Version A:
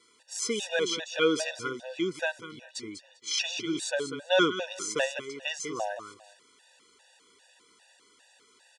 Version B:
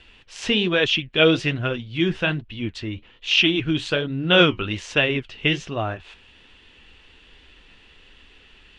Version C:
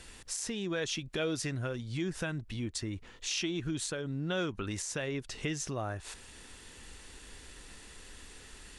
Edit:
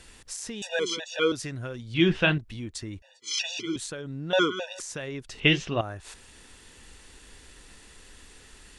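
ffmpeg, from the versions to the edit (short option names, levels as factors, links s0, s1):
-filter_complex "[0:a]asplit=3[s0][s1][s2];[1:a]asplit=2[s3][s4];[2:a]asplit=6[s5][s6][s7][s8][s9][s10];[s5]atrim=end=0.622[s11];[s0]atrim=start=0.618:end=1.322[s12];[s6]atrim=start=1.318:end=1.942[s13];[s3]atrim=start=1.938:end=2.382[s14];[s7]atrim=start=2.378:end=3.022[s15];[s1]atrim=start=3.018:end=3.762[s16];[s8]atrim=start=3.758:end=4.332[s17];[s2]atrim=start=4.328:end=4.802[s18];[s9]atrim=start=4.798:end=5.402[s19];[s4]atrim=start=5.398:end=5.812[s20];[s10]atrim=start=5.808[s21];[s11][s12]acrossfade=d=0.004:c1=hsin:c2=hsin[s22];[s22][s13]acrossfade=d=0.004:c1=hsin:c2=hsin[s23];[s23][s14]acrossfade=d=0.004:c1=hsin:c2=hsin[s24];[s24][s15]acrossfade=d=0.004:c1=hsin:c2=hsin[s25];[s25][s16]acrossfade=d=0.004:c1=hsin:c2=hsin[s26];[s26][s17]acrossfade=d=0.004:c1=hsin:c2=hsin[s27];[s27][s18]acrossfade=d=0.004:c1=hsin:c2=hsin[s28];[s28][s19]acrossfade=d=0.004:c1=hsin:c2=hsin[s29];[s29][s20]acrossfade=d=0.004:c1=hsin:c2=hsin[s30];[s30][s21]acrossfade=d=0.004:c1=hsin:c2=hsin"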